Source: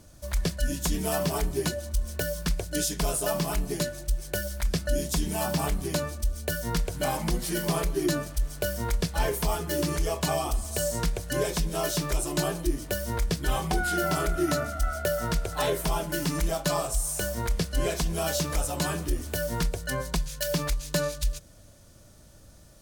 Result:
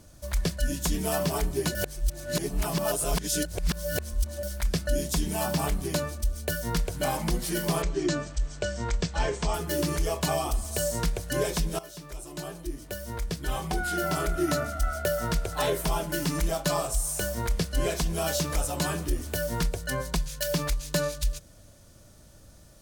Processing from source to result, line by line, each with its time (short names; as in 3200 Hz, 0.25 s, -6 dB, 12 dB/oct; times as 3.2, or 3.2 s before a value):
1.75–4.43 reverse
7.82–9.54 Chebyshev low-pass 8100 Hz, order 6
11.79–14.62 fade in, from -18 dB